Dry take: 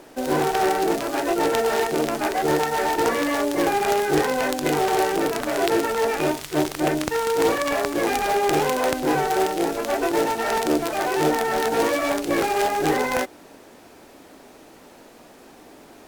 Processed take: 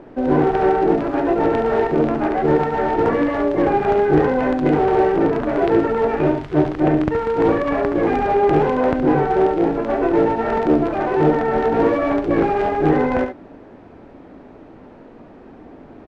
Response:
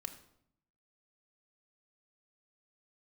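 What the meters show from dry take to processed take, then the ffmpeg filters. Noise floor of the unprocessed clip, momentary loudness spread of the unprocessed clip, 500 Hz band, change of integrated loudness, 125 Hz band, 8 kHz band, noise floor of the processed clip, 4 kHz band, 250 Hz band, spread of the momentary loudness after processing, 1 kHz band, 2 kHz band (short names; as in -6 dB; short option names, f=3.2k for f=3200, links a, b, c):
-48 dBFS, 3 LU, +5.0 dB, +4.5 dB, +10.0 dB, under -20 dB, -43 dBFS, under -10 dB, +7.0 dB, 3 LU, +2.5 dB, -1.5 dB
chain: -filter_complex "[0:a]lowpass=1.9k,lowshelf=f=360:g=11.5,asplit=2[a][b];[b]aecho=0:1:71:0.398[c];[a][c]amix=inputs=2:normalize=0"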